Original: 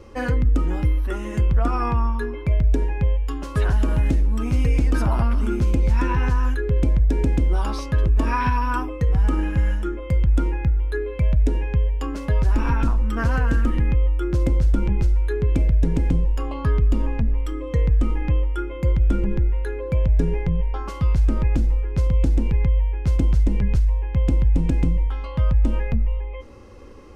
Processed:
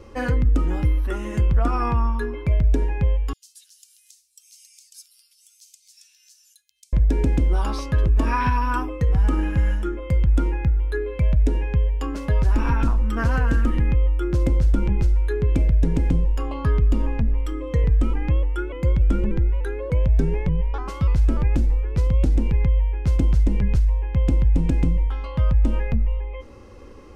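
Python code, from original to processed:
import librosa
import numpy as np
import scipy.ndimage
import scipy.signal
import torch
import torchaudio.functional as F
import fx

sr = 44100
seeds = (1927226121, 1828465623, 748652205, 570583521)

y = fx.cheby2_highpass(x, sr, hz=870.0, order=4, stop_db=80, at=(3.33, 6.93))
y = fx.vibrato_shape(y, sr, shape='saw_up', rate_hz=3.4, depth_cents=100.0, at=(17.84, 22.36))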